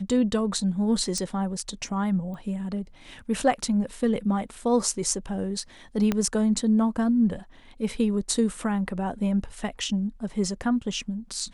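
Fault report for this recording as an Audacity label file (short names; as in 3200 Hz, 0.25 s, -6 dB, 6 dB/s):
1.180000	1.180000	pop -16 dBFS
2.340000	2.340000	pop -29 dBFS
6.120000	6.120000	pop -11 dBFS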